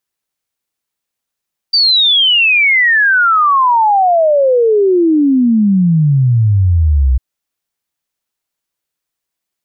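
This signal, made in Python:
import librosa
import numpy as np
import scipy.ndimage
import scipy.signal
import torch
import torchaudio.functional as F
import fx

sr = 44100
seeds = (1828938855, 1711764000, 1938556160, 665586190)

y = fx.ess(sr, length_s=5.45, from_hz=4700.0, to_hz=61.0, level_db=-7.0)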